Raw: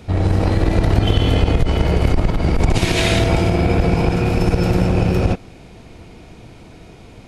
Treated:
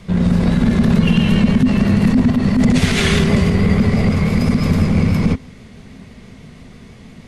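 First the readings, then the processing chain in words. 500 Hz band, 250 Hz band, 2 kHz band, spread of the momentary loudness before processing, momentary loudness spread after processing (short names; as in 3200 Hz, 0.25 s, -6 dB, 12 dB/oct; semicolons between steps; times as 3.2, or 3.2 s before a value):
-3.0 dB, +7.0 dB, +2.0 dB, 3 LU, 2 LU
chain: vibrato 6.1 Hz 38 cents; frequency shift -270 Hz; gain +1.5 dB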